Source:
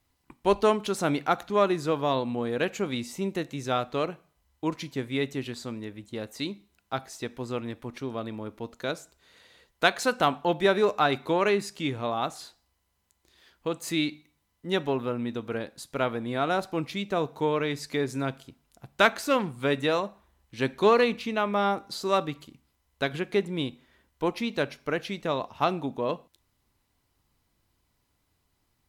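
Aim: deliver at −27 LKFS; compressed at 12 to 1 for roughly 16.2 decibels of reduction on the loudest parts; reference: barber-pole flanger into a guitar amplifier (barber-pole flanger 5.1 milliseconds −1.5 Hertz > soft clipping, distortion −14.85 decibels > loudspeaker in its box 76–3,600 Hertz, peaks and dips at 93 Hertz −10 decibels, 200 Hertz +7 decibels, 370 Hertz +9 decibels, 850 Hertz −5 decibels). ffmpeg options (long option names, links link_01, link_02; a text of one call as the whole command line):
ffmpeg -i in.wav -filter_complex "[0:a]acompressor=threshold=-32dB:ratio=12,asplit=2[link_01][link_02];[link_02]adelay=5.1,afreqshift=-1.5[link_03];[link_01][link_03]amix=inputs=2:normalize=1,asoftclip=threshold=-32.5dB,highpass=76,equalizer=frequency=93:width_type=q:width=4:gain=-10,equalizer=frequency=200:width_type=q:width=4:gain=7,equalizer=frequency=370:width_type=q:width=4:gain=9,equalizer=frequency=850:width_type=q:width=4:gain=-5,lowpass=frequency=3600:width=0.5412,lowpass=frequency=3600:width=1.3066,volume=13dB" out.wav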